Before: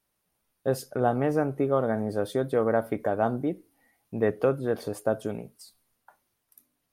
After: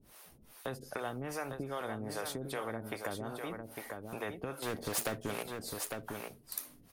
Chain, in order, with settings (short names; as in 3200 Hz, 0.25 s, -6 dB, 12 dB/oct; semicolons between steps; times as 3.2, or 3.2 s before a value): compressor 3:1, threshold -42 dBFS, peak gain reduction 17.5 dB; 4.62–5.43 sample leveller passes 2; harmonic tremolo 2.5 Hz, depth 100%, crossover 400 Hz; echo 0.853 s -9.5 dB; spectral compressor 2:1; gain +11.5 dB